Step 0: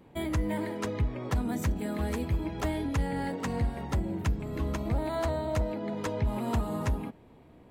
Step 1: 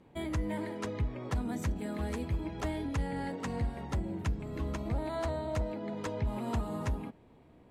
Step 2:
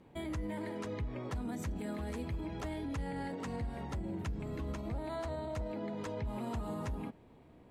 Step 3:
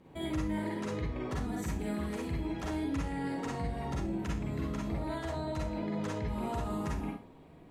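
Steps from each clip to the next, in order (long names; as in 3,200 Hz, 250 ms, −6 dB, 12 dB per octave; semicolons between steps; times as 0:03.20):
low-pass filter 11,000 Hz 12 dB per octave; level −4 dB
brickwall limiter −31.5 dBFS, peak gain reduction 6.5 dB
convolution reverb RT60 0.35 s, pre-delay 40 ms, DRR −3 dB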